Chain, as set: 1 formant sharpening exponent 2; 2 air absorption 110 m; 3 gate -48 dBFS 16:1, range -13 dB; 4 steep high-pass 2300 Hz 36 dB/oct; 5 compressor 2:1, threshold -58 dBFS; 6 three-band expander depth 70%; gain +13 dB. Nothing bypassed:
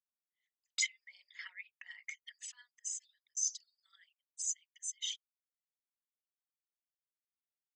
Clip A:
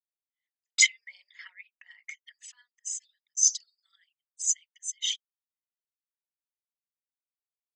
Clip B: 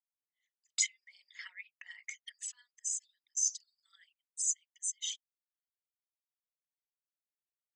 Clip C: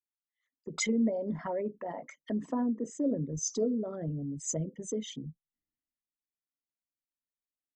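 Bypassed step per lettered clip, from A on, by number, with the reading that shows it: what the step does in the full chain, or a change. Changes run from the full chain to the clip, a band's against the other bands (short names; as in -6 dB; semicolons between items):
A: 5, mean gain reduction 5.5 dB; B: 2, momentary loudness spread change +2 LU; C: 4, crest factor change -9.5 dB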